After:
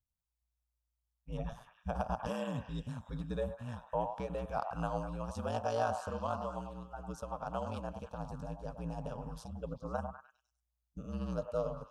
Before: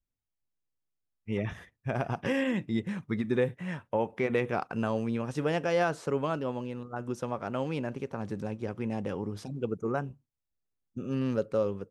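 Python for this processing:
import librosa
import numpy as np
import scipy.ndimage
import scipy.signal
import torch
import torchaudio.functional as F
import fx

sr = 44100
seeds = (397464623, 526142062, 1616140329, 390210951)

y = x * np.sin(2.0 * np.pi * 59.0 * np.arange(len(x)) / sr)
y = fx.fixed_phaser(y, sr, hz=850.0, stages=4)
y = fx.echo_stepped(y, sr, ms=100, hz=840.0, octaves=0.7, feedback_pct=70, wet_db=-5)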